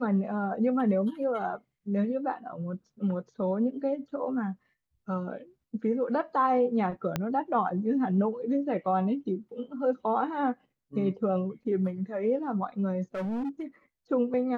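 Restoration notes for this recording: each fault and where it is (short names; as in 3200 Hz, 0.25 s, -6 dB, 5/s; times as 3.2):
7.16 pop -14 dBFS
13.15–13.61 clipped -29 dBFS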